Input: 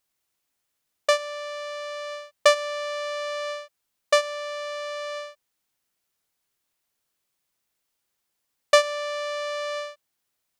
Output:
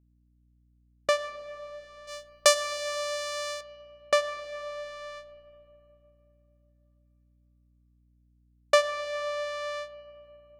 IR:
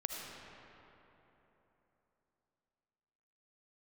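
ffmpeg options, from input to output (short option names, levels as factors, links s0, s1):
-filter_complex "[0:a]asettb=1/sr,asplit=3[s0][s1][s2];[s0]atrim=end=2.074[s3];[s1]atrim=start=2.07:end=3.61,asetpts=PTS-STARTPTS,afade=t=in:d=0.004:c=qsin,afade=t=out:st=1.536:d=0.004:c=qsin,bass=f=250:g=-12,treble=f=4000:g=14[s4];[s2]atrim=start=3.606[s5];[s3][s4]acrossfade=d=0.004:c1=hsin:c2=qsin[s6];[s6][s5]acrossfade=d=0.004:c1=qsin:c2=hsin,agate=range=0.0891:threshold=0.0251:ratio=16:detection=peak,aeval=exprs='val(0)+0.001*(sin(2*PI*60*n/s)+sin(2*PI*2*60*n/s)/2+sin(2*PI*3*60*n/s)/3+sin(2*PI*4*60*n/s)/4+sin(2*PI*5*60*n/s)/5)':c=same,asplit=2[s7][s8];[1:a]atrim=start_sample=2205,lowpass=3000[s9];[s8][s9]afir=irnorm=-1:irlink=0,volume=0.299[s10];[s7][s10]amix=inputs=2:normalize=0,volume=0.531"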